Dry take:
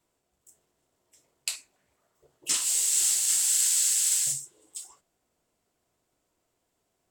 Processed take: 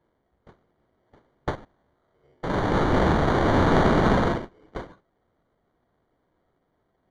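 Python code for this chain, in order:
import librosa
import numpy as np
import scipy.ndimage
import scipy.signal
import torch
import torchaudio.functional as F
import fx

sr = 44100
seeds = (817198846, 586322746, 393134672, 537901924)

y = fx.spec_steps(x, sr, hold_ms=100, at=(1.55, 3.72))
y = fx.sample_hold(y, sr, seeds[0], rate_hz=2600.0, jitter_pct=0)
y = fx.spacing_loss(y, sr, db_at_10k=28)
y = y * librosa.db_to_amplitude(7.5)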